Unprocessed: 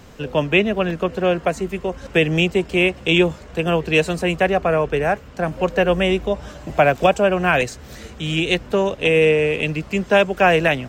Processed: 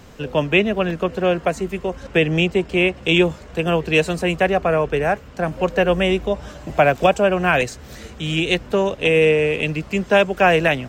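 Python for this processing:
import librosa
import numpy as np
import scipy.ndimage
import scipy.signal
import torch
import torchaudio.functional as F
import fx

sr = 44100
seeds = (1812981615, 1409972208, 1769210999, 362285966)

y = fx.high_shelf(x, sr, hz=6300.0, db=-6.5, at=(2.03, 3.03))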